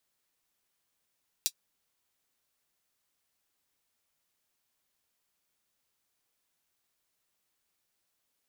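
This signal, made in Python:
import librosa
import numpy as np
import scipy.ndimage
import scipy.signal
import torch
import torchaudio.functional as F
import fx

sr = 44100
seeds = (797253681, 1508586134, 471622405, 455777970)

y = fx.drum_hat(sr, length_s=0.24, from_hz=4200.0, decay_s=0.07)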